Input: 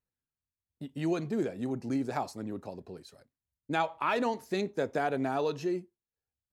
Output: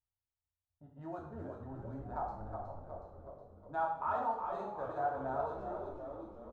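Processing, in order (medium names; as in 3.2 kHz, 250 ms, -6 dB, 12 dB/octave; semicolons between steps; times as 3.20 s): local Wiener filter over 9 samples; level-controlled noise filter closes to 2.5 kHz, open at -25.5 dBFS; FFT filter 120 Hz 0 dB, 190 Hz -15 dB, 360 Hz -18 dB, 790 Hz 0 dB, 1.4 kHz -5 dB, 2.3 kHz -28 dB, 3.7 kHz -22 dB; frequency-shifting echo 367 ms, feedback 60%, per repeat -65 Hz, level -6 dB; two-slope reverb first 0.61 s, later 2.4 s, DRR -2.5 dB; trim -5.5 dB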